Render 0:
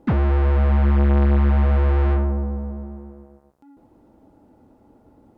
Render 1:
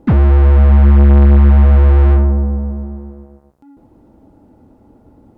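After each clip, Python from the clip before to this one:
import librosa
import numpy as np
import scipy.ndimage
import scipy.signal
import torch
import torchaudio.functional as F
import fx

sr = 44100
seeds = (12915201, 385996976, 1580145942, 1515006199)

y = fx.low_shelf(x, sr, hz=270.0, db=6.5)
y = F.gain(torch.from_numpy(y), 3.5).numpy()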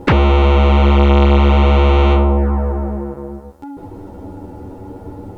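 y = x + 0.33 * np.pad(x, (int(2.2 * sr / 1000.0), 0))[:len(x)]
y = fx.env_flanger(y, sr, rest_ms=11.3, full_db=-8.0)
y = fx.spectral_comp(y, sr, ratio=2.0)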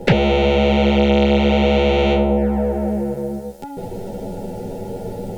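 y = fx.fixed_phaser(x, sr, hz=300.0, stages=6)
y = fx.band_squash(y, sr, depth_pct=40)
y = F.gain(torch.from_numpy(y), 3.0).numpy()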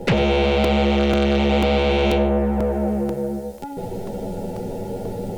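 y = 10.0 ** (-12.0 / 20.0) * np.tanh(x / 10.0 ** (-12.0 / 20.0))
y = y + 10.0 ** (-14.5 / 20.0) * np.pad(y, (int(97 * sr / 1000.0), 0))[:len(y)]
y = fx.buffer_crackle(y, sr, first_s=0.64, period_s=0.49, block=128, kind='repeat')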